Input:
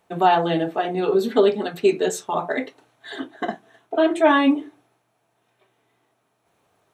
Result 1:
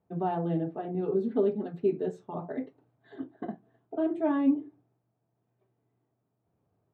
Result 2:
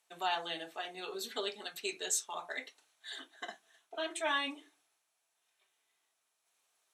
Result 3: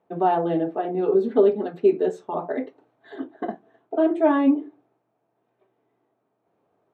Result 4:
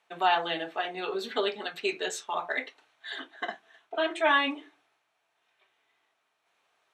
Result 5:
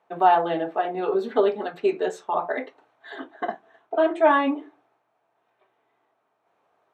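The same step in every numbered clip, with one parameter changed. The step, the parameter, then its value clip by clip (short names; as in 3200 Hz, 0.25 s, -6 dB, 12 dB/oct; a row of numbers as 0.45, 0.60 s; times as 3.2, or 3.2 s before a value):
band-pass, frequency: 100, 7900, 350, 2700, 890 Hz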